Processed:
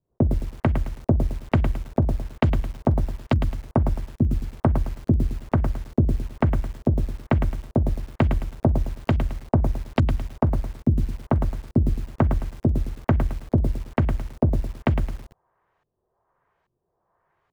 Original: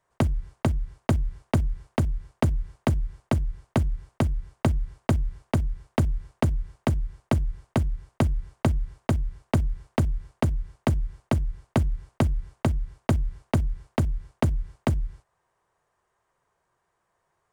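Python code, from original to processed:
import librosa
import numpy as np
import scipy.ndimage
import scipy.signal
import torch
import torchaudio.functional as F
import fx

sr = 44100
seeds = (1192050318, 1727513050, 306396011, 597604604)

y = fx.filter_lfo_lowpass(x, sr, shape='saw_up', hz=1.2, low_hz=240.0, high_hz=3800.0, q=1.2)
y = fx.echo_crushed(y, sr, ms=108, feedback_pct=35, bits=7, wet_db=-7.5)
y = y * librosa.db_to_amplitude(2.5)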